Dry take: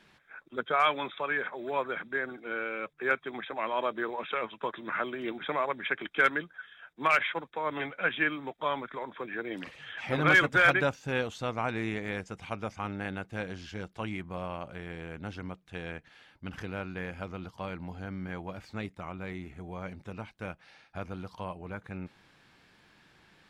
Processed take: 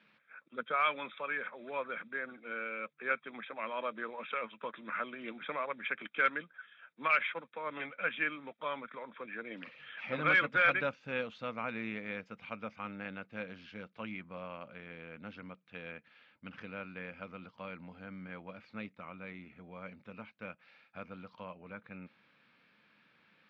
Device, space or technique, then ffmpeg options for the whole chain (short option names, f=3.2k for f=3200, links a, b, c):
kitchen radio: -af "highpass=160,equalizer=f=220:t=q:w=4:g=6,equalizer=f=370:t=q:w=4:g=-7,equalizer=f=520:t=q:w=4:g=5,equalizer=f=770:t=q:w=4:g=-5,equalizer=f=1.3k:t=q:w=4:g=5,equalizer=f=2.4k:t=q:w=4:g=7,lowpass=f=4.4k:w=0.5412,lowpass=f=4.4k:w=1.3066,volume=-8dB"